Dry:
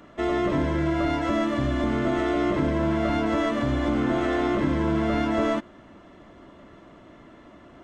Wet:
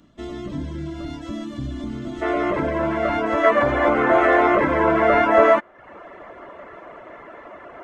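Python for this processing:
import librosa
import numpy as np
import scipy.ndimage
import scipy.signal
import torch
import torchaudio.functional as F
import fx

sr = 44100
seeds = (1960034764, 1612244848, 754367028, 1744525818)

y = fx.dereverb_blind(x, sr, rt60_s=0.6)
y = fx.band_shelf(y, sr, hz=990.0, db=fx.steps((0.0, -10.0), (2.21, 8.5), (3.43, 15.5)), octaves=3.0)
y = y * 10.0 ** (-1.5 / 20.0)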